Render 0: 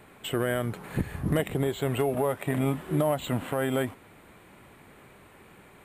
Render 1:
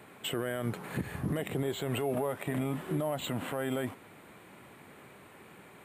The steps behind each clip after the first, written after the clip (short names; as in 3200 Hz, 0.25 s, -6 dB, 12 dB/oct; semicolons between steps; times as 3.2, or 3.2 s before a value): HPF 110 Hz 12 dB/oct; limiter -23 dBFS, peak gain reduction 10.5 dB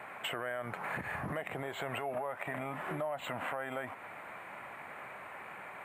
band shelf 1200 Hz +14.5 dB 2.5 oct; compressor 6:1, threshold -30 dBFS, peak gain reduction 12.5 dB; gain -4.5 dB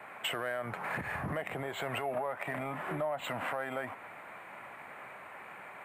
in parallel at -9 dB: soft clip -34 dBFS, distortion -13 dB; on the sum: three-band expander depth 40%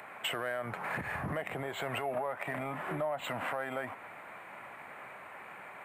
upward compressor, threshold -51 dBFS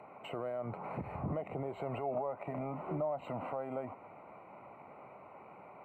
running mean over 26 samples; gain +1 dB